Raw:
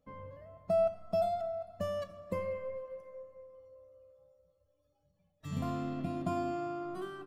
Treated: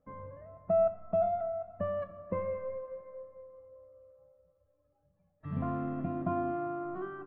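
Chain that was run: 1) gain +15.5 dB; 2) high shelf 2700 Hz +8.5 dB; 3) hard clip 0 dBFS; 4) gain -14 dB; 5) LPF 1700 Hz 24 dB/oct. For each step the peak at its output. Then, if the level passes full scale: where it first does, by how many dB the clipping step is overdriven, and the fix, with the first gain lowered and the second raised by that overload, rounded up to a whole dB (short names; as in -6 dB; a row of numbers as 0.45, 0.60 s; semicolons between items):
-5.5, -5.0, -5.0, -19.0, -19.0 dBFS; no overload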